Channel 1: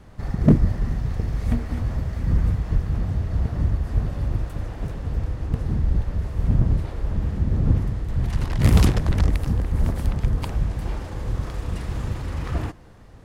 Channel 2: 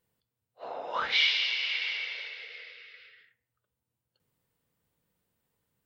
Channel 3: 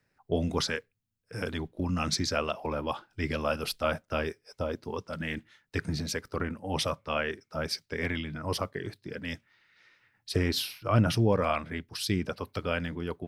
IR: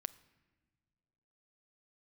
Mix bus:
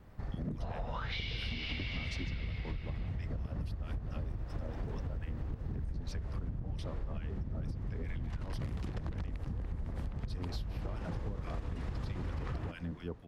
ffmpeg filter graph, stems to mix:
-filter_complex "[0:a]highshelf=f=8.3k:g=-10,dynaudnorm=f=970:g=3:m=11.5dB,volume=-9.5dB[a];[1:a]acompressor=threshold=-32dB:ratio=6,volume=-1dB[b];[2:a]acrossover=split=300|4800[c][d][e];[c]acompressor=threshold=-31dB:ratio=4[f];[d]acompressor=threshold=-41dB:ratio=4[g];[e]acompressor=threshold=-49dB:ratio=4[h];[f][g][h]amix=inputs=3:normalize=0,acrossover=split=1200[i][j];[i]aeval=exprs='val(0)*(1-1/2+1/2*cos(2*PI*4.5*n/s))':c=same[k];[j]aeval=exprs='val(0)*(1-1/2-1/2*cos(2*PI*4.5*n/s))':c=same[l];[k][l]amix=inputs=2:normalize=0,volume=1.5dB[m];[a][m]amix=inputs=2:normalize=0,highshelf=f=6.5k:g=-7.5,acompressor=threshold=-28dB:ratio=6,volume=0dB[n];[b][n]amix=inputs=2:normalize=0,acompressor=threshold=-34dB:ratio=6"

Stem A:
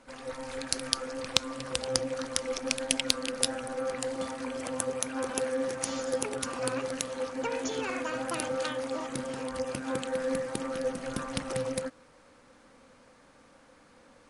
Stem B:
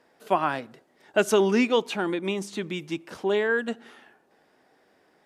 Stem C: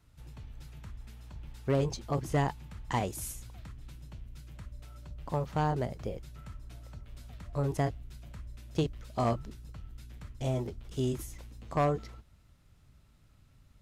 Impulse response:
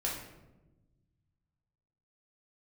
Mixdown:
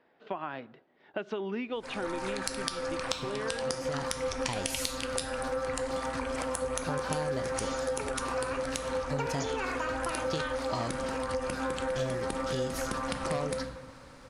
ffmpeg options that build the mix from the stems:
-filter_complex "[0:a]adynamicequalizer=threshold=0.00447:dfrequency=1200:dqfactor=0.85:tfrequency=1200:tqfactor=0.85:attack=5:release=100:ratio=0.375:range=3:mode=boostabove:tftype=bell,adelay=1750,volume=2.5dB,asplit=2[a][b];[b]volume=-13dB[c];[1:a]lowpass=f=3.7k:w=0.5412,lowpass=f=3.7k:w=1.3066,volume=-4.5dB,asplit=2[d][e];[2:a]equalizer=f=4.6k:w=1.1:g=15,acompressor=threshold=-29dB:ratio=6,adelay=1550,volume=1.5dB[f];[e]apad=whole_len=677492[g];[f][g]sidechaincompress=threshold=-42dB:ratio=8:attack=16:release=390[h];[a][d]amix=inputs=2:normalize=0,acompressor=threshold=-30dB:ratio=6,volume=0dB[i];[3:a]atrim=start_sample=2205[j];[c][j]afir=irnorm=-1:irlink=0[k];[h][i][k]amix=inputs=3:normalize=0,acompressor=threshold=-31dB:ratio=2"

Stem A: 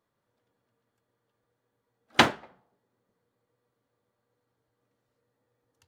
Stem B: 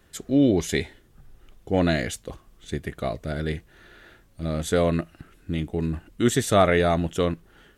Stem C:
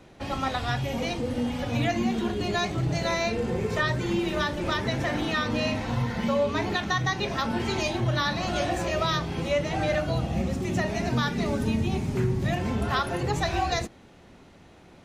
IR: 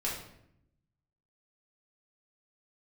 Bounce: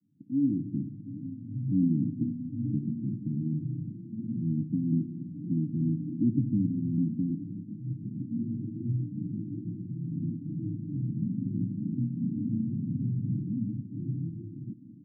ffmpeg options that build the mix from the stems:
-filter_complex "[0:a]volume=-11dB[a];[1:a]asoftclip=type=hard:threshold=-18dB,volume=-9dB,asplit=3[b][c][d];[c]volume=-9.5dB[e];[2:a]acompressor=threshold=-32dB:ratio=6,adelay=850,volume=-1.5dB[f];[d]apad=whole_len=701062[g];[f][g]sidechaincompress=threshold=-38dB:ratio=8:attack=16:release=1290[h];[3:a]atrim=start_sample=2205[i];[e][i]afir=irnorm=-1:irlink=0[j];[a][b][h][j]amix=inputs=4:normalize=0,dynaudnorm=f=210:g=7:m=8dB,asuperpass=centerf=180:order=20:qfactor=0.84"

